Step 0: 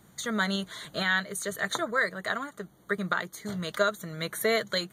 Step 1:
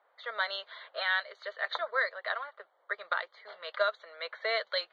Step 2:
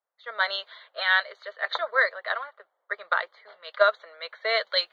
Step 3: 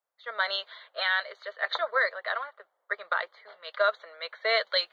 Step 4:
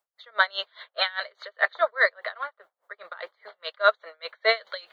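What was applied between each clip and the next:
low-pass that shuts in the quiet parts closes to 1,500 Hz, open at −22 dBFS; Chebyshev band-pass filter 520–4,600 Hz, order 4; level −2 dB
multiband upward and downward expander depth 70%; level +5.5 dB
brickwall limiter −14.5 dBFS, peak gain reduction 7.5 dB
tremolo with a sine in dB 4.9 Hz, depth 26 dB; level +8 dB

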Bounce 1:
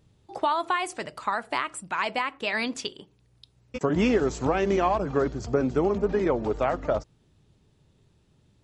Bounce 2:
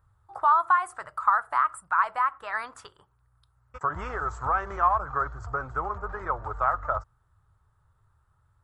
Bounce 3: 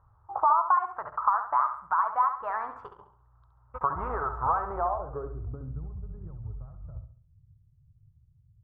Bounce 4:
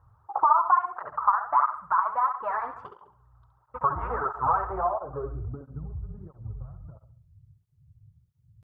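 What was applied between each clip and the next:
drawn EQ curve 100 Hz 0 dB, 230 Hz −26 dB, 600 Hz −9 dB, 1,300 Hz +11 dB, 2,500 Hz −17 dB, 6,000 Hz −17 dB, 9,000 Hz −5 dB
downward compressor 2 to 1, threshold −34 dBFS, peak gain reduction 10.5 dB; low-pass filter sweep 980 Hz → 150 Hz, 0:04.63–0:05.87; on a send: flutter between parallel walls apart 11.7 metres, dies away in 0.48 s; on the sum: level +2 dB
through-zero flanger with one copy inverted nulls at 1.5 Hz, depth 5.3 ms; level +5 dB

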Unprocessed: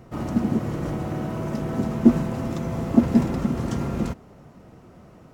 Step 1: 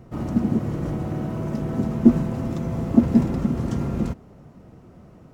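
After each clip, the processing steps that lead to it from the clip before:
low-shelf EQ 460 Hz +6.5 dB
level −4 dB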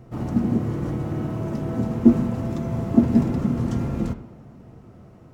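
convolution reverb, pre-delay 3 ms, DRR 6.5 dB
level −1 dB

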